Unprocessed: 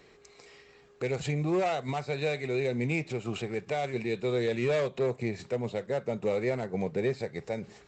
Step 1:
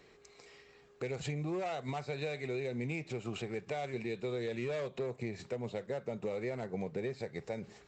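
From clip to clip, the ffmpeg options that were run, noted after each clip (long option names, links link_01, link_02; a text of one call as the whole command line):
ffmpeg -i in.wav -af "acompressor=threshold=-30dB:ratio=6,volume=-3.5dB" out.wav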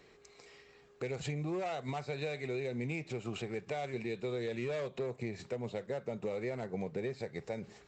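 ffmpeg -i in.wav -af anull out.wav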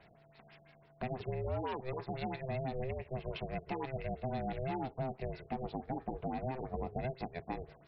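ffmpeg -i in.wav -af "aeval=exprs='val(0)*sin(2*PI*260*n/s)':channel_layout=same,afftfilt=real='re*lt(b*sr/1024,760*pow(5700/760,0.5+0.5*sin(2*PI*6*pts/sr)))':imag='im*lt(b*sr/1024,760*pow(5700/760,0.5+0.5*sin(2*PI*6*pts/sr)))':win_size=1024:overlap=0.75,volume=2.5dB" out.wav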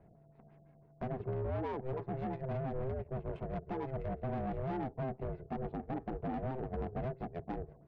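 ffmpeg -i in.wav -af "volume=35dB,asoftclip=hard,volume=-35dB,adynamicsmooth=sensitivity=2.5:basefreq=580,volume=4dB" out.wav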